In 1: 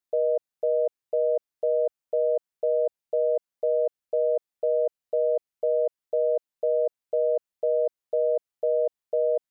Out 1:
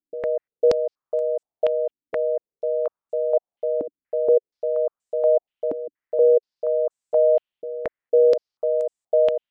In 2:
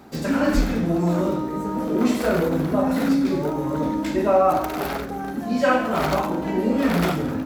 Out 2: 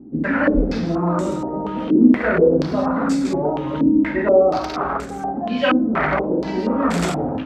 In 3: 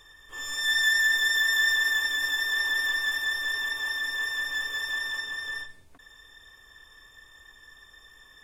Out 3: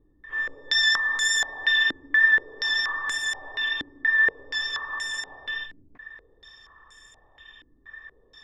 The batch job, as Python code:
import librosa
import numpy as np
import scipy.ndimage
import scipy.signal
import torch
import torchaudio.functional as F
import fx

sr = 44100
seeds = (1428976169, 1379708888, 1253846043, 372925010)

y = fx.filter_held_lowpass(x, sr, hz=4.2, low_hz=290.0, high_hz=7800.0)